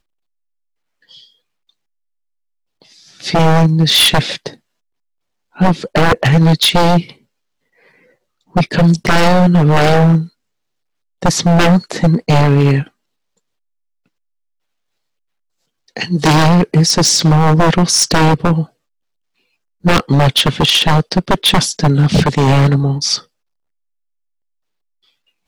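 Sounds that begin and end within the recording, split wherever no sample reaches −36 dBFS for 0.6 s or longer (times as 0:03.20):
0:01.11–0:01.24
0:02.82–0:04.55
0:05.56–0:07.13
0:08.55–0:10.28
0:11.22–0:12.87
0:15.88–0:18.66
0:19.84–0:23.22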